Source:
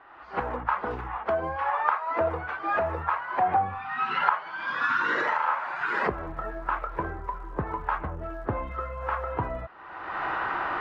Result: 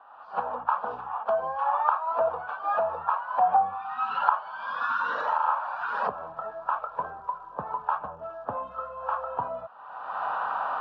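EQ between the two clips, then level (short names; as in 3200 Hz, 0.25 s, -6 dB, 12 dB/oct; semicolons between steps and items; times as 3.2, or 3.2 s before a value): BPF 280–3600 Hz; fixed phaser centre 850 Hz, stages 4; +2.5 dB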